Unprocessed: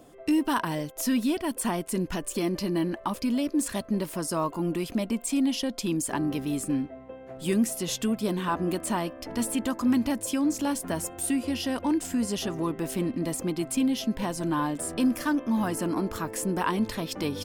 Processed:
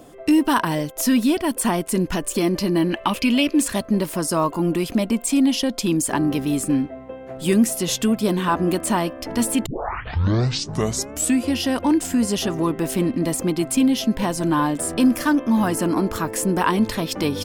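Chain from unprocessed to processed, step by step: 2.90–3.63 s: peaking EQ 2.7 kHz +13.5 dB 0.76 oct; 9.66 s: tape start 1.77 s; trim +7.5 dB

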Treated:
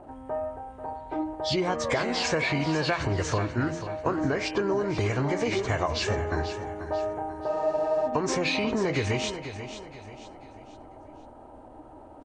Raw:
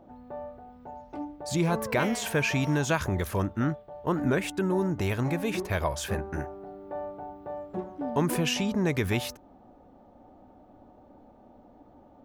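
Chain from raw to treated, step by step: knee-point frequency compression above 1.6 kHz 1.5:1; peaking EQ 180 Hz -10.5 dB 0.7 oct; de-hum 80.12 Hz, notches 37; compression 16:1, threshold -31 dBFS, peak gain reduction 11 dB; pitch shift +1 st; feedback delay 489 ms, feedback 39%, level -11 dB; spectral freeze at 7.49 s, 0.59 s; trim +8.5 dB

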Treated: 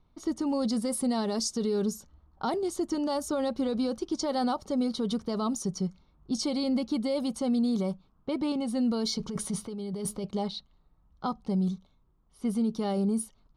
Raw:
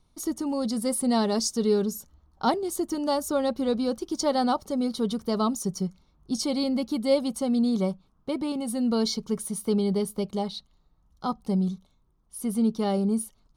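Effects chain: level-controlled noise filter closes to 2.7 kHz, open at -20 dBFS; 9.18–10.24 s: compressor with a negative ratio -33 dBFS, ratio -1; peak limiter -21 dBFS, peak gain reduction 9.5 dB

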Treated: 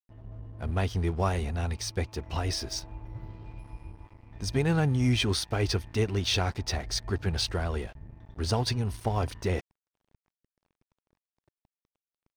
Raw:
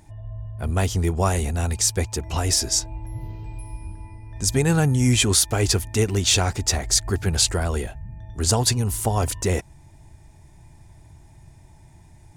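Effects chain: Savitzky-Golay filter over 15 samples; crossover distortion -40.5 dBFS; trim -5.5 dB

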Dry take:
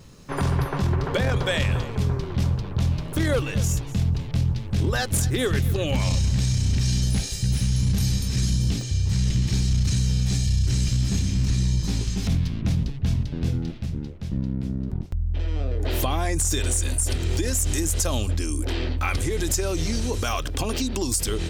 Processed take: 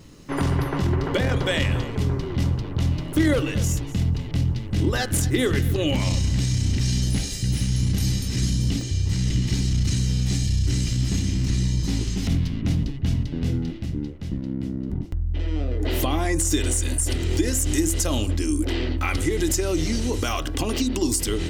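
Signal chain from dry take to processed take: de-hum 66.12 Hz, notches 28; small resonant body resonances 300/2000/2900 Hz, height 9 dB, ringing for 35 ms

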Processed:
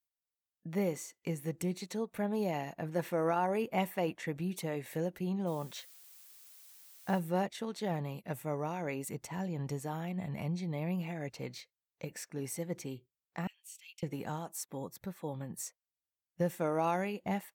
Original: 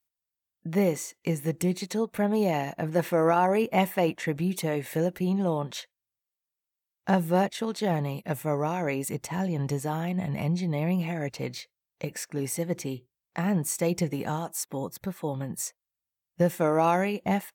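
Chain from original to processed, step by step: 5.46–7.18 s: added noise blue -48 dBFS; 13.47–14.03 s: ladder high-pass 2.7 kHz, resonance 75%; trim -8.5 dB

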